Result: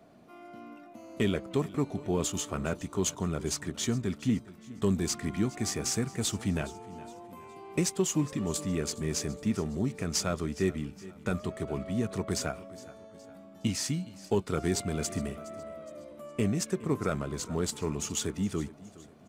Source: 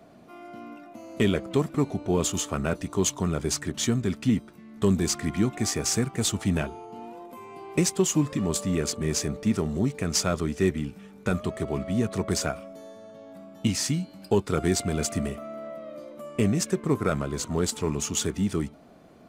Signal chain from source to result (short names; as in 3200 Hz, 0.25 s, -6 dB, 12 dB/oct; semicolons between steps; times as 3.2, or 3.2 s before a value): feedback echo 0.415 s, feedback 43%, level -19 dB; gain -5 dB